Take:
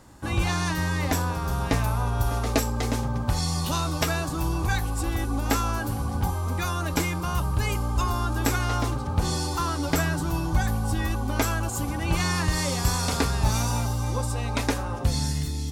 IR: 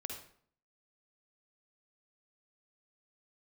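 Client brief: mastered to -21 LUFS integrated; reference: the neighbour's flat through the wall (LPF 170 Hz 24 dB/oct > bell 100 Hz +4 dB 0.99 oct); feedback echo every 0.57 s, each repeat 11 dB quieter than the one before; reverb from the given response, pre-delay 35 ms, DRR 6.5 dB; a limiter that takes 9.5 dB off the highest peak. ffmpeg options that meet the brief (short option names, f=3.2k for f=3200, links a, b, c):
-filter_complex "[0:a]alimiter=limit=-18dB:level=0:latency=1,aecho=1:1:570|1140|1710:0.282|0.0789|0.0221,asplit=2[a][b];[1:a]atrim=start_sample=2205,adelay=35[c];[b][c]afir=irnorm=-1:irlink=0,volume=-5dB[d];[a][d]amix=inputs=2:normalize=0,lowpass=f=170:w=0.5412,lowpass=f=170:w=1.3066,equalizer=f=100:t=o:w=0.99:g=4,volume=4.5dB"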